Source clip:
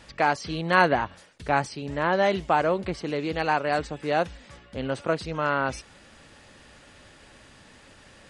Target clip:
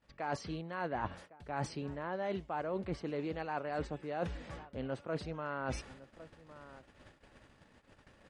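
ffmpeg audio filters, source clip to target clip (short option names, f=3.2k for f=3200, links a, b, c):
-filter_complex "[0:a]highshelf=f=2.7k:g=-11,agate=range=-25dB:threshold=-51dB:ratio=16:detection=peak,asplit=2[a][b];[b]adelay=1108,volume=-28dB,highshelf=f=4k:g=-24.9[c];[a][c]amix=inputs=2:normalize=0,areverse,acompressor=threshold=-35dB:ratio=20,areverse,volume=1.5dB"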